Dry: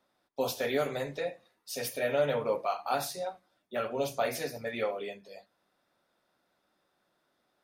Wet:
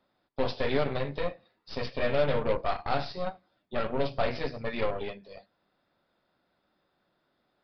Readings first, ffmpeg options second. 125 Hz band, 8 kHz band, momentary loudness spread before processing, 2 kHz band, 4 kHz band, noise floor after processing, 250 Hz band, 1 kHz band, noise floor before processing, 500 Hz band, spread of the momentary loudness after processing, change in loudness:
+7.5 dB, under -20 dB, 11 LU, +1.5 dB, +1.0 dB, -76 dBFS, +4.0 dB, +1.5 dB, -77 dBFS, +1.0 dB, 12 LU, +1.5 dB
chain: -af "aeval=exprs='0.141*(cos(1*acos(clip(val(0)/0.141,-1,1)))-cos(1*PI/2))+0.0158*(cos(8*acos(clip(val(0)/0.141,-1,1)))-cos(8*PI/2))':c=same,aresample=11025,aresample=44100,lowshelf=f=220:g=7.5"

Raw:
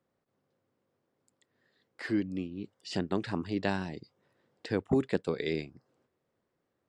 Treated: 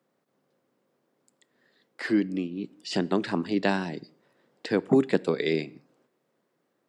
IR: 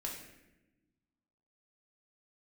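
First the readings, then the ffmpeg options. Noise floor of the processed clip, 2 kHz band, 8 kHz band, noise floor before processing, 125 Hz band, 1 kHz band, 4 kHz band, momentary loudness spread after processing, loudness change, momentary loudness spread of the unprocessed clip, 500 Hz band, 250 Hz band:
-75 dBFS, +6.0 dB, +6.0 dB, -81 dBFS, +2.5 dB, +6.0 dB, +6.0 dB, 14 LU, +6.0 dB, 14 LU, +6.5 dB, +6.0 dB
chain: -filter_complex "[0:a]highpass=f=150:w=0.5412,highpass=f=150:w=1.3066,asplit=2[a][b];[1:a]atrim=start_sample=2205,afade=t=out:st=0.25:d=0.01,atrim=end_sample=11466[c];[b][c]afir=irnorm=-1:irlink=0,volume=-17dB[d];[a][d]amix=inputs=2:normalize=0,volume=5.5dB"

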